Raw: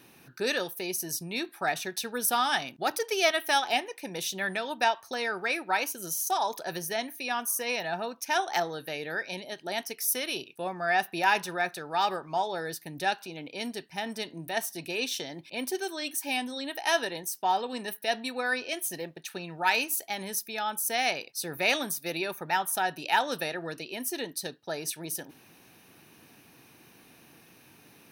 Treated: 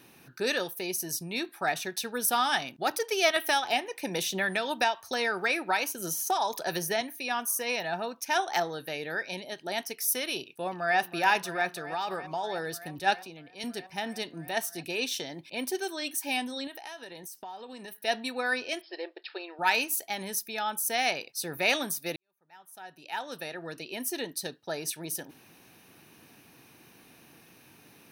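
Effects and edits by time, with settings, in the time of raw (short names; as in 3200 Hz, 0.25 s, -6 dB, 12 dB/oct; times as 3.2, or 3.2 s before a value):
3.36–7.01 three-band squash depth 70%
10.39–10.98 echo throw 0.32 s, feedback 85%, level -13.5 dB
11.77–12.44 compressor 5:1, threshold -28 dBFS
12.99–13.64 three-band expander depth 100%
16.67–18.05 compressor, threshold -40 dBFS
18.81–19.59 brick-wall FIR band-pass 310–5400 Hz
22.16–23.97 fade in quadratic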